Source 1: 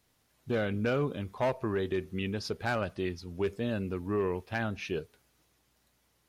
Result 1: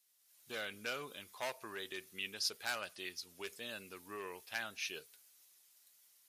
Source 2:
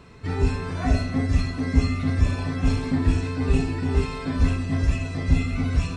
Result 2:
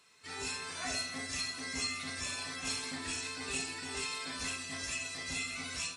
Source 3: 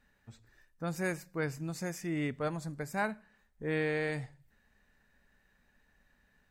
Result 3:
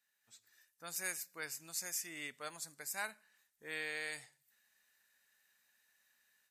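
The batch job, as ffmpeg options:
-af "aderivative,dynaudnorm=f=190:g=3:m=8dB" -ar 32000 -c:a libmp3lame -b:a 96k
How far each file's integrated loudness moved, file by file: -9.5, -12.0, -6.0 LU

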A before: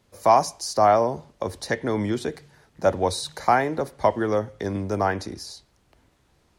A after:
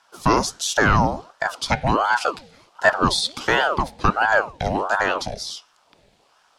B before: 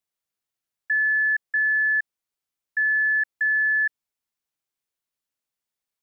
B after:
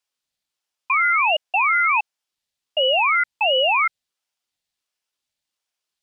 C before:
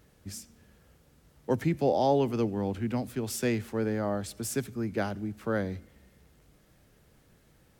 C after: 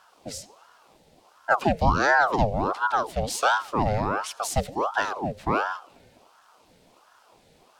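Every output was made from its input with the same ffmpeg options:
-af "equalizer=f=125:t=o:w=1:g=6,equalizer=f=250:t=o:w=1:g=9,equalizer=f=500:t=o:w=1:g=9,equalizer=f=1k:t=o:w=1:g=-8,equalizer=f=2k:t=o:w=1:g=8,equalizer=f=4k:t=o:w=1:g=12,equalizer=f=8k:t=o:w=1:g=6,aeval=exprs='val(0)*sin(2*PI*760*n/s+760*0.6/1.4*sin(2*PI*1.4*n/s))':c=same,volume=-1dB"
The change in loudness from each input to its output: +3.0, +3.0, +5.5 LU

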